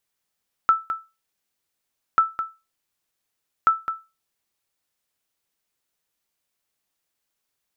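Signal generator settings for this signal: sonar ping 1320 Hz, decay 0.26 s, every 1.49 s, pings 3, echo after 0.21 s, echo -10 dB -8.5 dBFS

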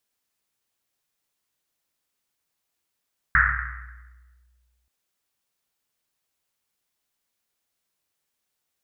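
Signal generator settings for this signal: Risset drum length 1.53 s, pitch 61 Hz, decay 1.98 s, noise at 1600 Hz, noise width 680 Hz, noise 65%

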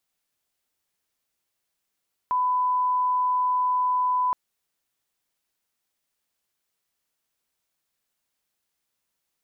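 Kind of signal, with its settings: line-up tone -20 dBFS 2.02 s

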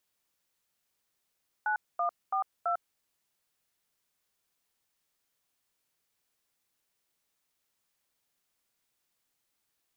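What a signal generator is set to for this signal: DTMF "9142", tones 0.1 s, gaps 0.232 s, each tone -29 dBFS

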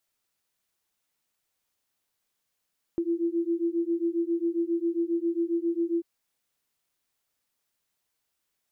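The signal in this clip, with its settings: beating tones 334 Hz, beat 7.4 Hz, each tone -27.5 dBFS 3.04 s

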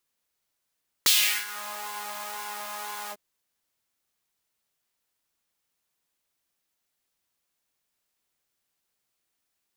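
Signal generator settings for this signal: synth patch with pulse-width modulation G#3, noise -2.5 dB, filter highpass, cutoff 350 Hz, Q 2.3, filter envelope 3.5 oct, filter decay 0.60 s, attack 2.2 ms, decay 0.38 s, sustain -20 dB, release 0.05 s, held 2.05 s, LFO 2 Hz, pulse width 39%, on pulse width 6%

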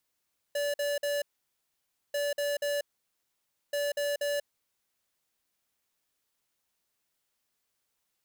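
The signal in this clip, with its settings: beep pattern square 577 Hz, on 0.19 s, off 0.05 s, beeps 3, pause 0.92 s, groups 3, -30 dBFS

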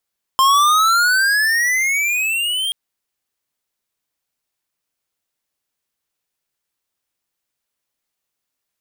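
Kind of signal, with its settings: gliding synth tone square, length 2.33 s, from 1050 Hz, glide +19.5 st, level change -8.5 dB, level -12 dB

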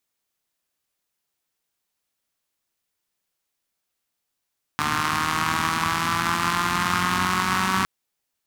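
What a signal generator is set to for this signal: four-cylinder engine model, changing speed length 3.06 s, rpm 4500, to 5700, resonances 110/210/1100 Hz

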